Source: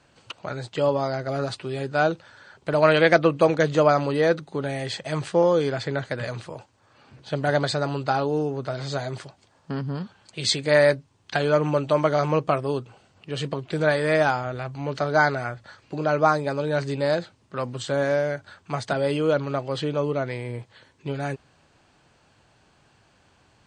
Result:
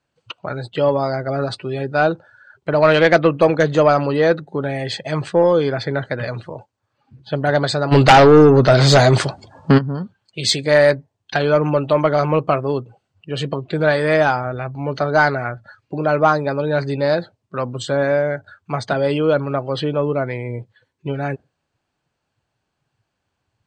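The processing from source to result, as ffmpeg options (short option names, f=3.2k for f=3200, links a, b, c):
-filter_complex "[0:a]asplit=3[a][b][c];[a]afade=t=out:st=7.91:d=0.02[d];[b]aeval=exprs='0.398*sin(PI/2*3.55*val(0)/0.398)':c=same,afade=t=in:st=7.91:d=0.02,afade=t=out:st=9.77:d=0.02[e];[c]afade=t=in:st=9.77:d=0.02[f];[d][e][f]amix=inputs=3:normalize=0,afftdn=nr=21:nf=-42,acontrast=40"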